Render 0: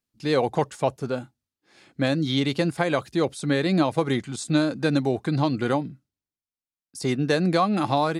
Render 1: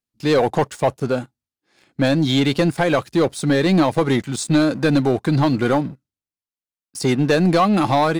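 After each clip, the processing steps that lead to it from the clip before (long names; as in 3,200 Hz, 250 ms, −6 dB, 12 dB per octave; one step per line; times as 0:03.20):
leveller curve on the samples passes 2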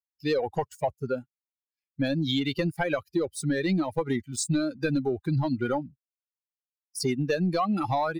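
spectral dynamics exaggerated over time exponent 2
downward compressor, threshold −23 dBFS, peak gain reduction 8.5 dB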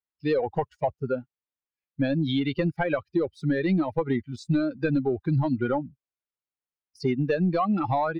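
high-frequency loss of the air 290 metres
level +2.5 dB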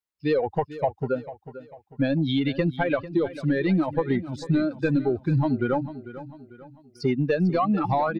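repeating echo 446 ms, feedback 42%, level −14.5 dB
level +1.5 dB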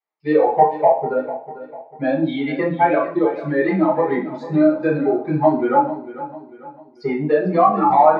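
resonant band-pass 830 Hz, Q 1.6
convolution reverb RT60 0.45 s, pre-delay 3 ms, DRR −4.5 dB
level +2.5 dB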